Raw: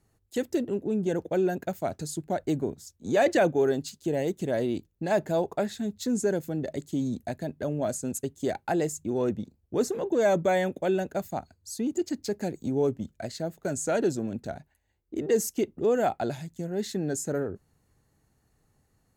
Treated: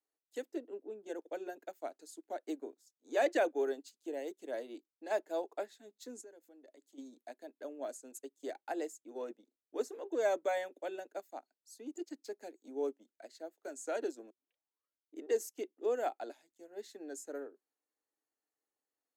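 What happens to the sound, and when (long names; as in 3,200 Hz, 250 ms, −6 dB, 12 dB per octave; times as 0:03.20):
0:00.47–0:01.06: high-shelf EQ 2,900 Hz −9.5 dB
0:06.21–0:06.98: downward compressor 2.5 to 1, threshold −39 dBFS
0:14.30: tape start 0.85 s
whole clip: Butterworth high-pass 280 Hz 48 dB per octave; notch filter 370 Hz, Q 12; expander for the loud parts 1.5 to 1, over −46 dBFS; level −7 dB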